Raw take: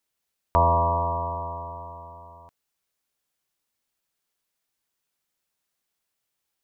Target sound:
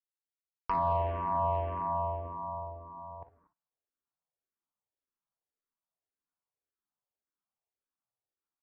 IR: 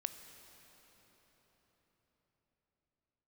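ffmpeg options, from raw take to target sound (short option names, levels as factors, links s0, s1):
-filter_complex "[0:a]areverse,acompressor=mode=upward:threshold=0.01:ratio=2.5,areverse,lowpass=f=1300:w=0.5412,lowpass=f=1300:w=1.3066,agate=range=0.0224:threshold=0.00794:ratio=3:detection=peak,lowshelf=f=440:g=-4.5,acompressor=threshold=0.0398:ratio=8[s0];[1:a]atrim=start_sample=2205,atrim=end_sample=6174,asetrate=31752,aresample=44100[s1];[s0][s1]afir=irnorm=-1:irlink=0,atempo=0.77,aecho=1:1:41|57:0.188|0.188,aresample=11025,asoftclip=type=tanh:threshold=0.0631,aresample=44100,asplit=2[s2][s3];[s3]afreqshift=-1.8[s4];[s2][s4]amix=inputs=2:normalize=1,volume=2"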